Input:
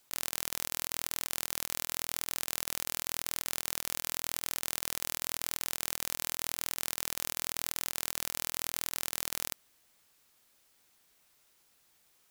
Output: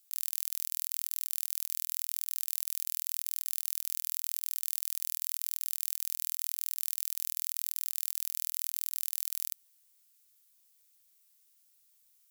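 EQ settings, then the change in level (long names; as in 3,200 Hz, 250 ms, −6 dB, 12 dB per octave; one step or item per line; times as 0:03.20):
first difference
−2.0 dB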